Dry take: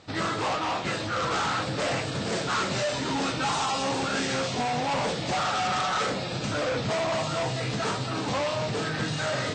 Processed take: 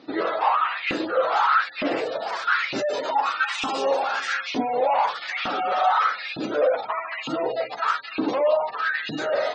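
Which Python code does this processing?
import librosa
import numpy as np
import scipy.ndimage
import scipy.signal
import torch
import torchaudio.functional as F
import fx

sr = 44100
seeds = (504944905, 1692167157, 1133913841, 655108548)

y = fx.spec_gate(x, sr, threshold_db=-20, keep='strong')
y = fx.filter_lfo_highpass(y, sr, shape='saw_up', hz=1.1, low_hz=250.0, high_hz=2600.0, q=4.9)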